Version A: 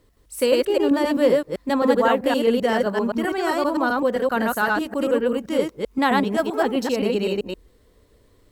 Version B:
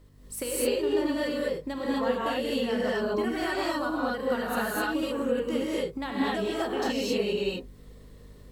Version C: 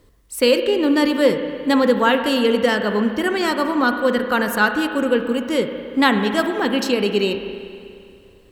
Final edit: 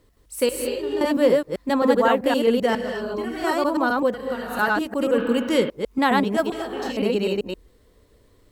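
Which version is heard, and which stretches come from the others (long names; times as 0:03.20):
A
0:00.49–0:01.01: punch in from B
0:02.75–0:03.44: punch in from B
0:04.14–0:04.59: punch in from B
0:05.18–0:05.70: punch in from C
0:06.52–0:06.97: punch in from B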